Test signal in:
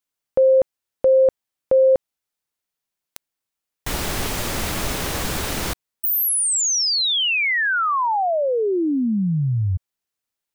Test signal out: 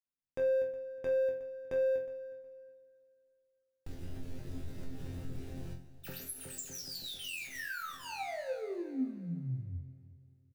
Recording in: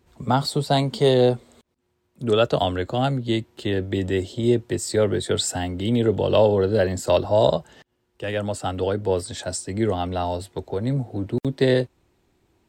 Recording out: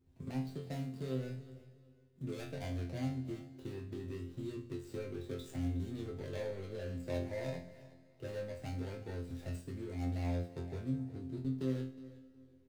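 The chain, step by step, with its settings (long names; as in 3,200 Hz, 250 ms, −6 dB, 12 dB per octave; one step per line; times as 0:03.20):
running median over 41 samples
parametric band 770 Hz −10.5 dB 2.7 octaves
mains-hum notches 60/120/180/240 Hz
downward compressor 6 to 1, threshold −34 dBFS
resonators tuned to a chord F2 fifth, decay 0.39 s
repeating echo 365 ms, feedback 22%, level −18.5 dB
four-comb reverb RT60 2.6 s, DRR 16.5 dB
level +9 dB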